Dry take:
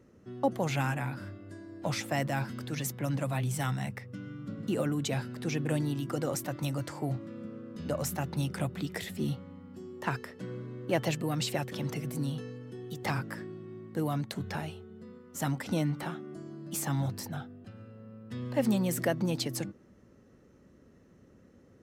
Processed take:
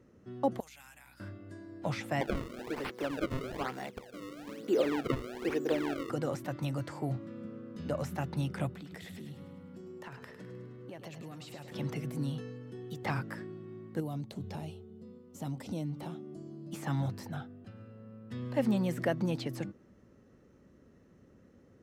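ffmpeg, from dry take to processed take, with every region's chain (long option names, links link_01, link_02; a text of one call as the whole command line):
ffmpeg -i in.wav -filter_complex "[0:a]asettb=1/sr,asplit=3[link_01][link_02][link_03];[link_01]atrim=end=0.604[link_04];[link_02]atrim=start=0.6:end=1.2,asetpts=PTS-STARTPTS,afade=type=in:duration=0.004:curve=qsin,afade=type=out:start_time=0.596:duration=0.004:curve=qsin,aderivative,acompressor=threshold=-50dB:ratio=2.5:attack=3.2:release=140:knee=1:detection=peak,aeval=exprs='val(0)+0.000631*(sin(2*PI*60*n/s)+sin(2*PI*2*60*n/s)/2+sin(2*PI*3*60*n/s)/3+sin(2*PI*4*60*n/s)/4+sin(2*PI*5*60*n/s)/5)':channel_layout=same[link_05];[link_03]atrim=start=1.196[link_06];[link_04][link_05]acrossfade=duration=0.004:curve1=hsin:curve2=qsin[link_07];[link_07][link_06]acrossfade=duration=0.004:curve1=qsin:curve2=hsin,asettb=1/sr,asplit=3[link_08][link_09][link_10];[link_08]atrim=end=2.214[link_11];[link_09]atrim=start=2.21:end=6.1,asetpts=PTS-STARTPTS,afade=type=in:duration=0.004:curve=qsin,afade=type=out:start_time=3.886:duration=0.004:curve=qsin,highpass=frequency=390:width_type=q:width=2.9,acrusher=samples=31:mix=1:aa=0.000001:lfo=1:lforange=49.6:lforate=1.1[link_12];[link_10]atrim=start=6.096[link_13];[link_11][link_12]acrossfade=duration=0.004:curve1=hsin:curve2=qsin[link_14];[link_14][link_13]acrossfade=duration=0.004:curve1=qsin:curve2=hsin,asettb=1/sr,asplit=3[link_15][link_16][link_17];[link_15]atrim=end=8.714[link_18];[link_16]atrim=start=8.71:end=11.75,asetpts=PTS-STARTPTS,afade=type=in:duration=0.004:curve=qsin,afade=type=out:start_time=3.036:duration=0.004:curve=qsin,acompressor=threshold=-42dB:ratio=5:attack=3.2:release=140:knee=1:detection=peak,aecho=1:1:103|206|309|412|515|618:0.355|0.188|0.0997|0.0528|0.028|0.0148,atrim=end_sample=134064[link_19];[link_17]atrim=start=11.746[link_20];[link_18][link_19]acrossfade=duration=0.004:curve1=hsin:curve2=qsin[link_21];[link_21][link_20]acrossfade=duration=0.004:curve1=qsin:curve2=hsin,asettb=1/sr,asplit=3[link_22][link_23][link_24];[link_22]atrim=end=14.004[link_25];[link_23]atrim=start=14:end=16.73,asetpts=PTS-STARTPTS,afade=type=in:duration=0.004:curve=qsin,afade=type=out:start_time=2.726:duration=0.004:curve=qsin,equalizer=frequency=1600:width_type=o:width=1.2:gain=-14,acompressor=threshold=-34dB:ratio=2:attack=3.2:release=140:knee=1:detection=peak[link_26];[link_24]atrim=start=16.726[link_27];[link_25][link_26]acrossfade=duration=0.004:curve1=hsin:curve2=qsin[link_28];[link_28][link_27]acrossfade=duration=0.004:curve1=qsin:curve2=hsin,acrossover=split=3500[link_29][link_30];[link_30]acompressor=threshold=-46dB:ratio=4:attack=1:release=60[link_31];[link_29][link_31]amix=inputs=2:normalize=0,highshelf=frequency=6000:gain=-4.5,volume=-1.5dB" out.wav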